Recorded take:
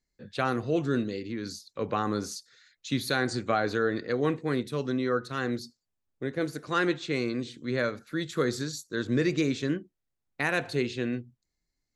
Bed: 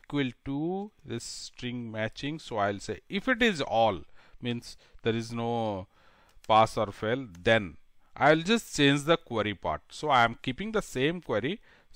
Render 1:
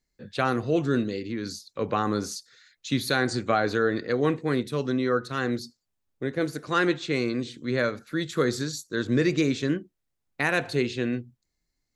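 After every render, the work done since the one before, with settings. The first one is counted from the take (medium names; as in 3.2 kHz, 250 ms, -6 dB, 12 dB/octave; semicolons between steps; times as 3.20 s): trim +3 dB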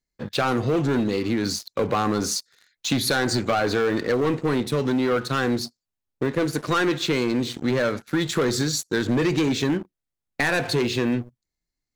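waveshaping leveller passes 3; compression 4:1, threshold -20 dBFS, peak gain reduction 6 dB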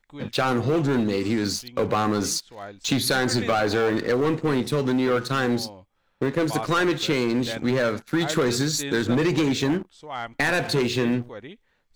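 add bed -10 dB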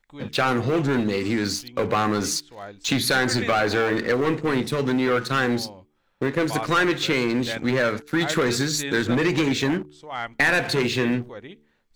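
de-hum 74.1 Hz, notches 6; dynamic bell 2 kHz, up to +5 dB, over -38 dBFS, Q 1.2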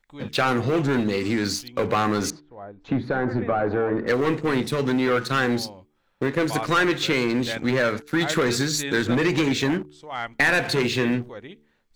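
2.30–4.07 s: low-pass 1 kHz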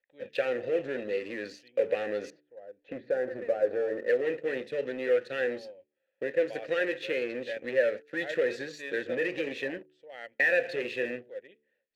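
vowel filter e; in parallel at -7 dB: crossover distortion -43.5 dBFS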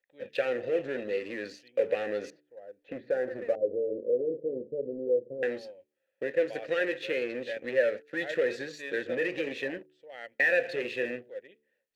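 3.55–5.43 s: steep low-pass 550 Hz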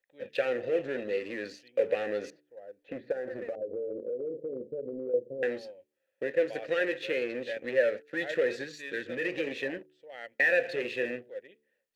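3.12–5.14 s: compression 4:1, threshold -32 dBFS; 8.64–9.25 s: peaking EQ 650 Hz -8 dB 1.4 oct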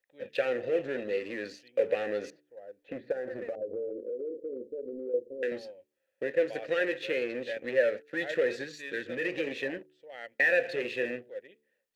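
3.90–5.52 s: static phaser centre 360 Hz, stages 4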